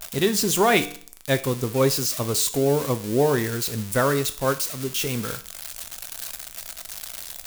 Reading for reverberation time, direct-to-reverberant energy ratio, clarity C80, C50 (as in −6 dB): 0.50 s, 10.0 dB, 19.5 dB, 15.5 dB